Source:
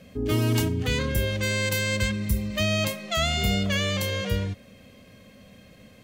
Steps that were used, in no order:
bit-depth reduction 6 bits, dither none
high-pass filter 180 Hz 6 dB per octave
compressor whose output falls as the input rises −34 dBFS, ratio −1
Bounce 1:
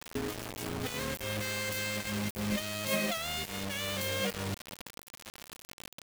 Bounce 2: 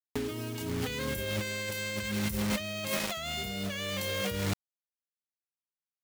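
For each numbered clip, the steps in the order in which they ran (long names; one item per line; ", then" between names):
compressor whose output falls as the input rises, then high-pass filter, then bit-depth reduction
high-pass filter, then bit-depth reduction, then compressor whose output falls as the input rises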